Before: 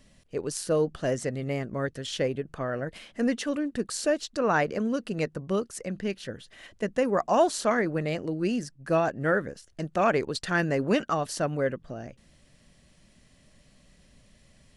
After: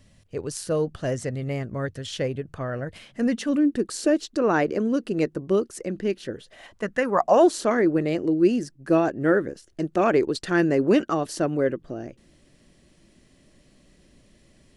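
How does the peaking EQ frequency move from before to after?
peaking EQ +11.5 dB 0.72 oct
2.92 s 96 Hz
3.77 s 340 Hz
6.30 s 340 Hz
6.99 s 1.8 kHz
7.46 s 340 Hz

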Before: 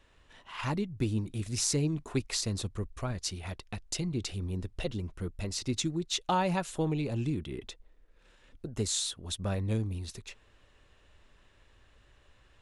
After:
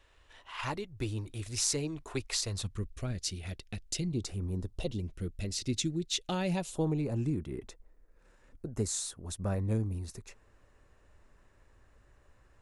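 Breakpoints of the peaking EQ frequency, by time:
peaking EQ -13.5 dB 0.97 oct
2.47 s 190 Hz
2.88 s 980 Hz
4.04 s 980 Hz
4.36 s 4.2 kHz
5.12 s 980 Hz
6.47 s 980 Hz
6.99 s 3.3 kHz

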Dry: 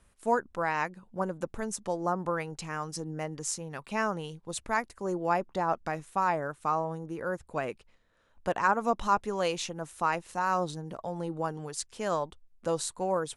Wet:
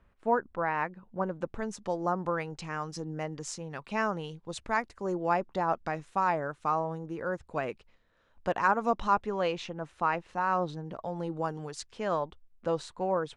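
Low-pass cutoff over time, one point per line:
0.90 s 2.2 kHz
1.91 s 5.4 kHz
8.87 s 5.4 kHz
9.38 s 3.1 kHz
10.64 s 3.1 kHz
11.58 s 7.3 kHz
12.07 s 3.4 kHz

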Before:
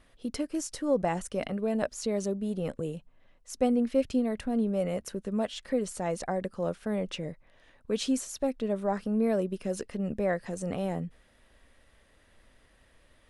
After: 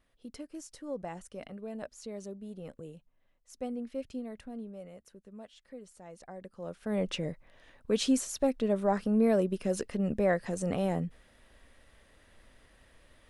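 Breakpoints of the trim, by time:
4.40 s -11.5 dB
4.93 s -18 dB
6.09 s -18 dB
6.68 s -9.5 dB
7.01 s +1.5 dB

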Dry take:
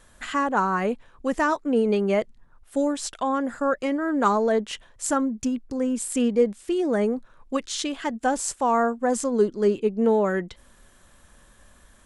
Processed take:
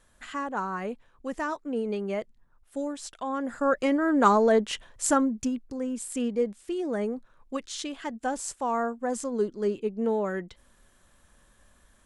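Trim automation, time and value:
3.19 s -8.5 dB
3.80 s +1 dB
5.13 s +1 dB
5.79 s -6.5 dB

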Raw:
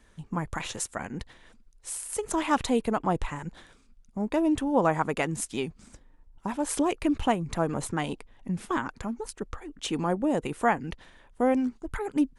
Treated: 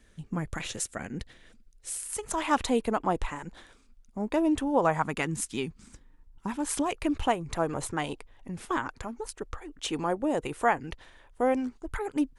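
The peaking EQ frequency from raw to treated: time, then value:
peaking EQ -9 dB 0.73 oct
1.98 s 960 Hz
2.61 s 140 Hz
4.67 s 140 Hz
5.21 s 640 Hz
6.66 s 640 Hz
7.09 s 200 Hz

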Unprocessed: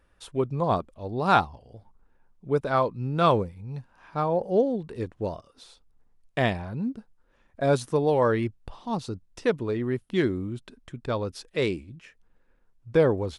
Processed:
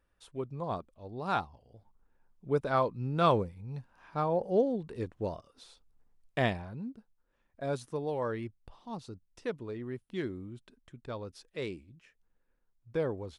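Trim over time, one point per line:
1.48 s -11 dB
2.49 s -4.5 dB
6.45 s -4.5 dB
6.91 s -11.5 dB

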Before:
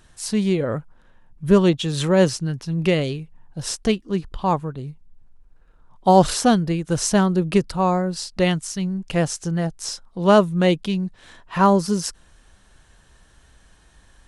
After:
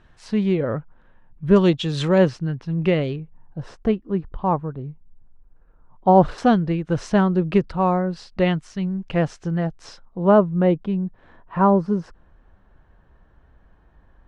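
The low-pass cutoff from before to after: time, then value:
2.5 kHz
from 1.56 s 4.8 kHz
from 2.18 s 2.4 kHz
from 3.16 s 1.4 kHz
from 6.38 s 2.5 kHz
from 10.03 s 1.2 kHz

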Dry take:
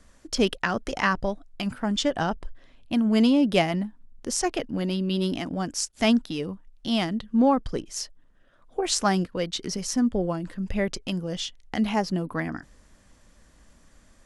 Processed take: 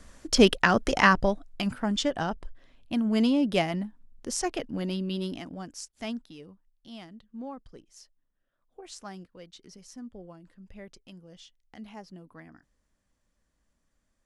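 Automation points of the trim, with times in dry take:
1.00 s +4.5 dB
2.23 s -4 dB
4.97 s -4 dB
5.75 s -12 dB
6.92 s -19.5 dB

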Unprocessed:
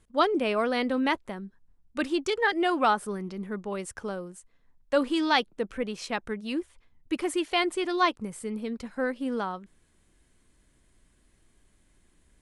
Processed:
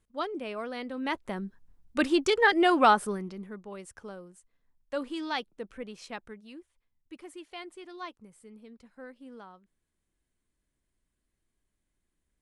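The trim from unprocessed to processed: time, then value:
0.95 s -10 dB
1.36 s +3 dB
3.01 s +3 dB
3.58 s -9 dB
6.16 s -9 dB
6.58 s -17 dB

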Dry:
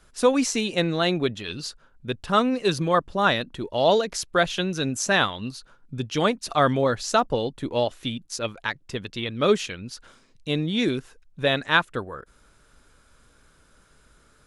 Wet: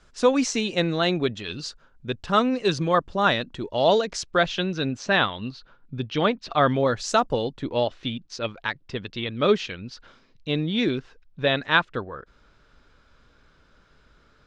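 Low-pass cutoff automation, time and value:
low-pass 24 dB/octave
4.17 s 7.2 kHz
4.91 s 4.4 kHz
6.63 s 4.4 kHz
7.18 s 9.5 kHz
7.73 s 5.1 kHz

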